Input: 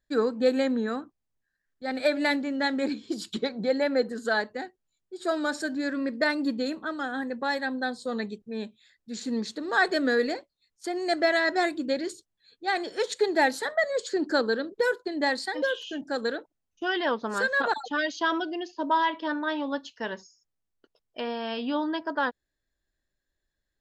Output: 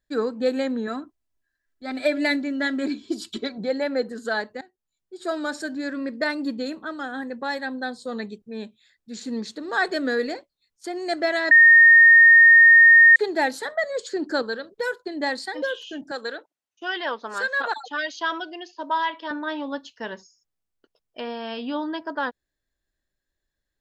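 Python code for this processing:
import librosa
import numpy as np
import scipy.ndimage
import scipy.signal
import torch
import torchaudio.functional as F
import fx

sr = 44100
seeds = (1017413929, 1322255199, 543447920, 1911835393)

y = fx.comb(x, sr, ms=3.0, depth=0.65, at=(0.87, 3.58))
y = fx.peak_eq(y, sr, hz=310.0, db=-11.5, octaves=0.77, at=(14.42, 15.06))
y = fx.weighting(y, sr, curve='A', at=(16.11, 19.31))
y = fx.edit(y, sr, fx.fade_in_from(start_s=4.61, length_s=0.53, floor_db=-15.0),
    fx.bleep(start_s=11.51, length_s=1.65, hz=1840.0, db=-8.0), tone=tone)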